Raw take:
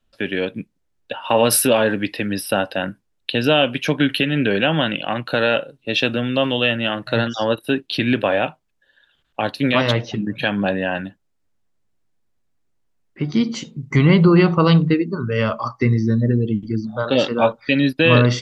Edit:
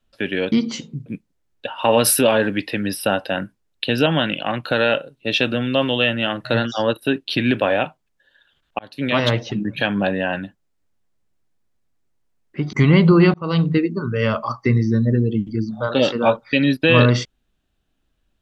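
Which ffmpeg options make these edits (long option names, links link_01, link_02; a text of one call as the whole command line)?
ffmpeg -i in.wav -filter_complex "[0:a]asplit=7[link_01][link_02][link_03][link_04][link_05][link_06][link_07];[link_01]atrim=end=0.522[link_08];[link_02]atrim=start=13.348:end=13.892[link_09];[link_03]atrim=start=0.518:end=3.522[link_10];[link_04]atrim=start=4.678:end=9.41,asetpts=PTS-STARTPTS,afade=type=out:start_time=4.728:duration=0.004:curve=hsin[link_11];[link_05]atrim=start=9.41:end=13.352,asetpts=PTS-STARTPTS,afade=type=in:duration=0.44[link_12];[link_06]atrim=start=13.888:end=14.5,asetpts=PTS-STARTPTS,afade=type=out:start_time=0.608:duration=0.004:curve=hsin[link_13];[link_07]atrim=start=14.5,asetpts=PTS-STARTPTS,afade=type=in:duration=0.59:curve=qsin[link_14];[link_08][link_09]acrossfade=duration=0.004:curve1=hsin:curve2=hsin[link_15];[link_15][link_10]acrossfade=duration=0.004:curve1=hsin:curve2=hsin[link_16];[link_11][link_12]concat=n=2:v=0:a=1[link_17];[link_16][link_17]acrossfade=duration=0.004:curve1=hsin:curve2=hsin[link_18];[link_13][link_14]concat=n=2:v=0:a=1[link_19];[link_18][link_19]acrossfade=duration=0.004:curve1=hsin:curve2=hsin" out.wav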